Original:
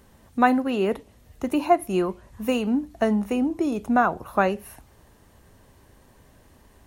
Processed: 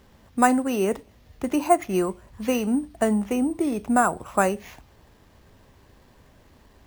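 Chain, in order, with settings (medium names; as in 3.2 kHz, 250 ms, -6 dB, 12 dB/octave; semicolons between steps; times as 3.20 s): sample-and-hold 5×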